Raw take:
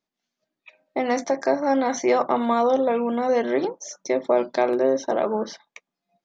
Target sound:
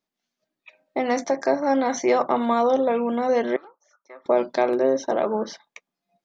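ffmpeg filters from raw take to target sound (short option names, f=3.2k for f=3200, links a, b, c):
-filter_complex "[0:a]asettb=1/sr,asplit=3[a][b][c];[a]atrim=end=3.564[d];[b]atrim=start=3.56:end=4.26,asetpts=PTS-STARTPTS,afade=t=in:d=0.004:c=qsin,afade=t=out:st=0.696:d=0.004:c=qsin,bandpass=f=1.3k:t=q:w=6.2:csg=0[e];[c]atrim=start=4.256[f];[d][e]acrossfade=d=0.004:c1=hsin:c2=qsin[g];[g][f]acrossfade=d=0.004:c1=qsin:c2=hsin"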